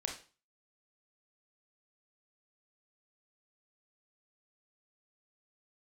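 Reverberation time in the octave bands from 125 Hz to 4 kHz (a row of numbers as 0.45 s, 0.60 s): 0.40 s, 0.40 s, 0.35 s, 0.35 s, 0.35 s, 0.35 s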